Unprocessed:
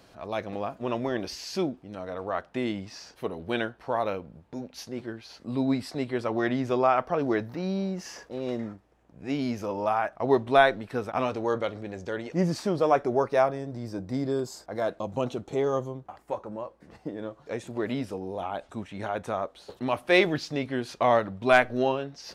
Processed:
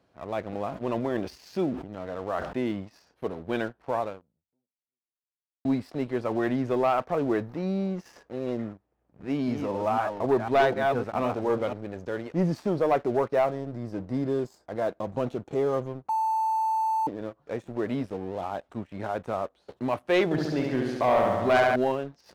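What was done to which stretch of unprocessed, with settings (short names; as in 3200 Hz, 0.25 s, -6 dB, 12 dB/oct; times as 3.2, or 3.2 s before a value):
0.68–2.64 sustainer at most 72 dB/s
3.99–5.65 fade out exponential
8.72–11.73 reverse delay 0.252 s, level -6 dB
16.09–17.07 bleep 884 Hz -22.5 dBFS
20.24–21.76 flutter echo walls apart 12 m, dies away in 1.3 s
whole clip: HPF 47 Hz 24 dB/oct; high shelf 2600 Hz -11 dB; sample leveller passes 2; gain -6.5 dB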